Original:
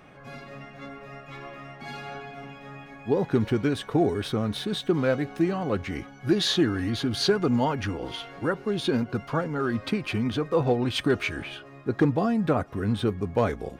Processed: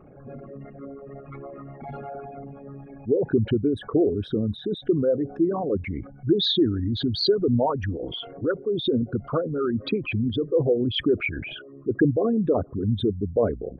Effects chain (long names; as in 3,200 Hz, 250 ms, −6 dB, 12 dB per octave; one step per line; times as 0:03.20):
spectral envelope exaggerated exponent 3
0:03.68–0:05.68: flat-topped bell 3,200 Hz −9.5 dB 1.3 octaves
level +2 dB